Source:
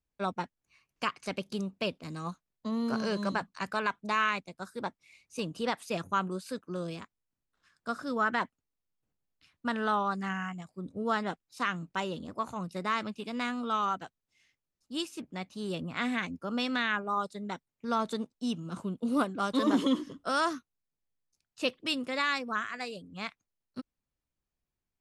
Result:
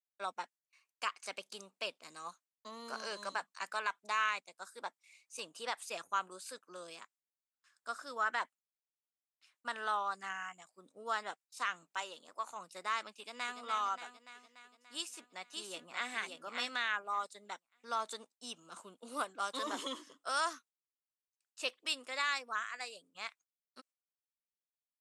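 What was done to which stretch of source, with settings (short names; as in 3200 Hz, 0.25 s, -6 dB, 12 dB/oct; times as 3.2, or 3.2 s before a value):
11.94–12.49 low shelf 270 Hz -8.5 dB
13.18–13.59 echo throw 0.29 s, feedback 65%, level -7 dB
14.95–16.1 echo throw 0.58 s, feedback 15%, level -4 dB
whole clip: HPF 700 Hz 12 dB/oct; gate with hold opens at -58 dBFS; bell 8000 Hz +8 dB 0.78 oct; gain -4.5 dB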